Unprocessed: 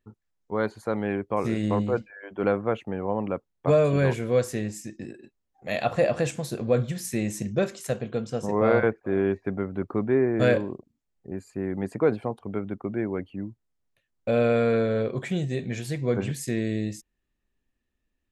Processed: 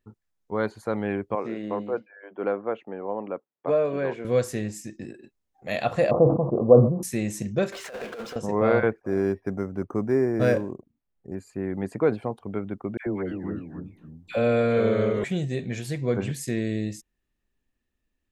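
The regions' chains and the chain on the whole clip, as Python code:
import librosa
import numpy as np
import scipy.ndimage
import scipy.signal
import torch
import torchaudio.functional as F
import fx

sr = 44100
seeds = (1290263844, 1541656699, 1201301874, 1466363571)

y = fx.chain(x, sr, fx.highpass(hz=310.0, slope=12),
    fx.spacing_loss(db_at_10k=27), at=(1.35, 4.25))
y = fx.chain(y, sr, fx.steep_lowpass(hz=1200.0, slope=96),
    fx.peak_eq(hz=540.0, db=8.5, octaves=2.9),
    fx.sustainer(db_per_s=77.0), at=(6.11, 7.03))
y = fx.chain(y, sr, fx.bandpass_edges(low_hz=640.0, high_hz=2400.0),
    fx.over_compress(threshold_db=-40.0, ratio=-0.5),
    fx.power_curve(exponent=0.5), at=(7.72, 8.36))
y = fx.chain(y, sr, fx.air_absorb(metres=130.0),
    fx.resample_linear(factor=6), at=(9.01, 11.35))
y = fx.chain(y, sr, fx.echo_pitch(ms=251, semitones=-2, count=2, db_per_echo=-6.0),
    fx.dispersion(late='lows', ms=94.0, hz=1100.0),
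    fx.echo_bbd(ms=263, stages=2048, feedback_pct=31, wet_db=-19), at=(12.97, 15.24))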